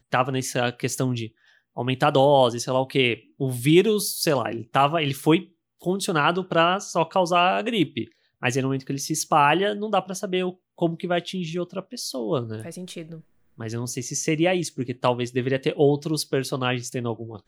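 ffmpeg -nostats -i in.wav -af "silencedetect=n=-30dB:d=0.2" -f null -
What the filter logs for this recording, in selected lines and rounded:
silence_start: 1.26
silence_end: 1.77 | silence_duration: 0.50
silence_start: 3.14
silence_end: 3.40 | silence_duration: 0.26
silence_start: 5.41
silence_end: 5.84 | silence_duration: 0.43
silence_start: 8.04
silence_end: 8.43 | silence_duration: 0.39
silence_start: 10.51
silence_end: 10.81 | silence_duration: 0.31
silence_start: 13.15
silence_end: 13.60 | silence_duration: 0.45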